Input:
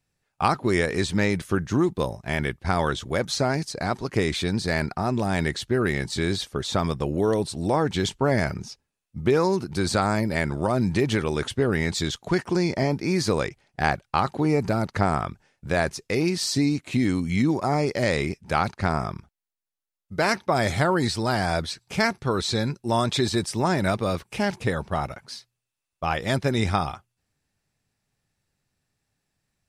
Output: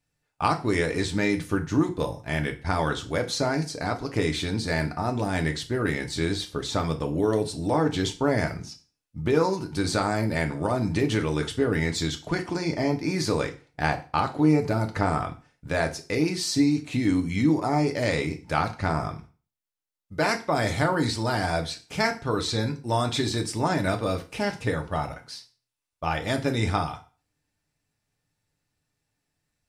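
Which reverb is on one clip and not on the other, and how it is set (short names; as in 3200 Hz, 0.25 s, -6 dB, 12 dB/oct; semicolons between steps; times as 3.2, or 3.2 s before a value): FDN reverb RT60 0.36 s, low-frequency decay 1×, high-frequency decay 0.95×, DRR 4 dB; gain -3 dB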